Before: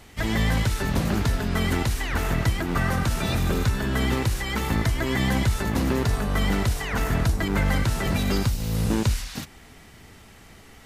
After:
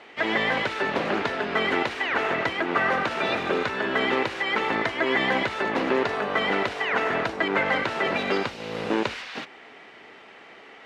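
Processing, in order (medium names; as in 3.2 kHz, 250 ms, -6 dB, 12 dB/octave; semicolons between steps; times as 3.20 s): Chebyshev band-pass 420–2700 Hz, order 2; trim +6 dB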